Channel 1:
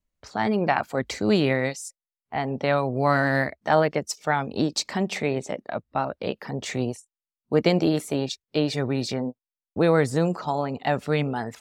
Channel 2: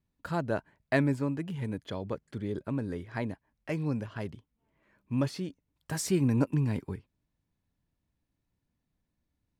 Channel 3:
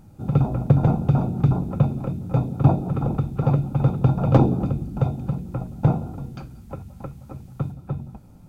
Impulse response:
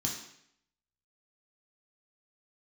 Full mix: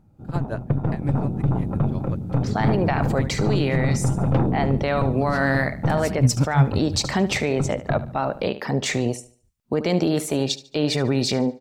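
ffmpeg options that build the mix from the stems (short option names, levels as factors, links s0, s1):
-filter_complex "[0:a]acompressor=threshold=0.0891:ratio=6,adelay=2200,volume=0.596,asplit=2[s0][s1];[s1]volume=0.531[s2];[1:a]asubboost=boost=11:cutoff=120,aeval=exprs='val(0)*pow(10,-23*(0.5-0.5*cos(2*PI*5.6*n/s))/20)':c=same,volume=1.26[s3];[2:a]highshelf=f=2700:g=-10,aeval=exprs='0.708*(cos(1*acos(clip(val(0)/0.708,-1,1)))-cos(1*PI/2))+0.0631*(cos(8*acos(clip(val(0)/0.708,-1,1)))-cos(8*PI/2))':c=same,volume=0.376[s4];[s0][s4]amix=inputs=2:normalize=0,dynaudnorm=f=850:g=3:m=4.47,alimiter=limit=0.251:level=0:latency=1:release=23,volume=1[s5];[s2]aecho=0:1:73|146|219|292|365:1|0.34|0.116|0.0393|0.0134[s6];[s3][s5][s6]amix=inputs=3:normalize=0"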